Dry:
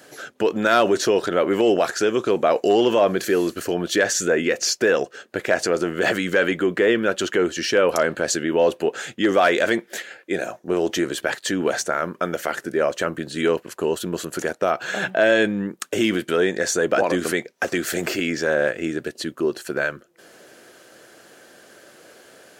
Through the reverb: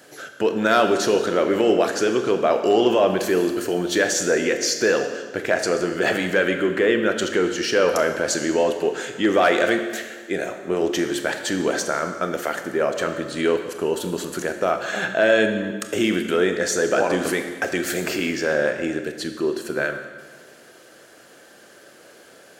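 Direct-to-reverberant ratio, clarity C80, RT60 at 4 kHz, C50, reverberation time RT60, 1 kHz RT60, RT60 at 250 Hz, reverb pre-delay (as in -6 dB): 6.0 dB, 9.0 dB, 1.4 s, 8.0 dB, 1.5 s, 1.5 s, 1.5 s, 26 ms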